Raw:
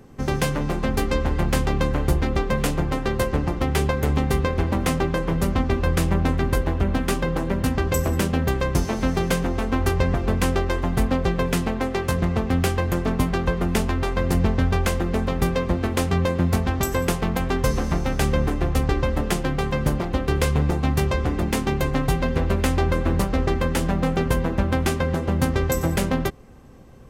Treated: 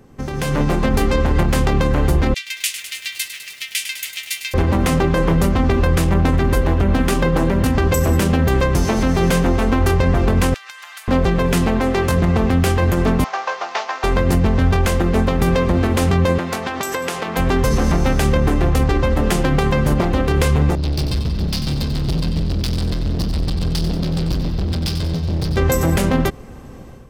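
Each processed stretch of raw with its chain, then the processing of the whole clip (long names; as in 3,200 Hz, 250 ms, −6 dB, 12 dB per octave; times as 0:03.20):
0:02.34–0:04.54: Butterworth high-pass 2,200 Hz + feedback echo at a low word length 102 ms, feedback 80%, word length 8 bits, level −10 dB
0:10.54–0:11.08: Bessel high-pass filter 2,000 Hz, order 4 + downward compressor 16 to 1, threshold −42 dBFS
0:13.24–0:14.04: variable-slope delta modulation 32 kbit/s + Chebyshev high-pass filter 740 Hz, order 3 + parametric band 4,000 Hz −3.5 dB 2.8 octaves
0:16.38–0:17.37: meter weighting curve A + downward compressor 4 to 1, threshold −29 dBFS
0:20.75–0:25.57: drawn EQ curve 180 Hz 0 dB, 280 Hz −26 dB, 550 Hz −20 dB, 2,000 Hz −16 dB, 4,900 Hz +8 dB, 8,400 Hz −28 dB, 13,000 Hz −9 dB + gain into a clipping stage and back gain 28 dB + repeating echo 92 ms, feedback 53%, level −9.5 dB
whole clip: brickwall limiter −18 dBFS; automatic gain control gain up to 10.5 dB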